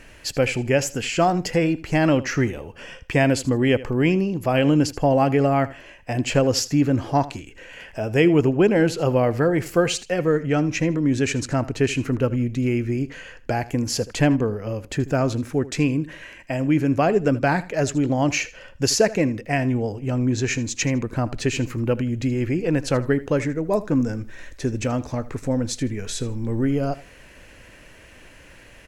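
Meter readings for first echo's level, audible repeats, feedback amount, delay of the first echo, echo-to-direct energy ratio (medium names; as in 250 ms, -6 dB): -17.5 dB, 2, 22%, 79 ms, -17.5 dB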